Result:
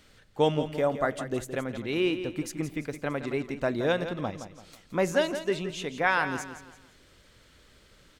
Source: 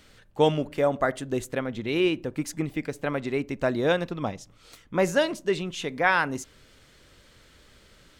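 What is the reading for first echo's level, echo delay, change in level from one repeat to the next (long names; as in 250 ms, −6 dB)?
−10.5 dB, 169 ms, −9.0 dB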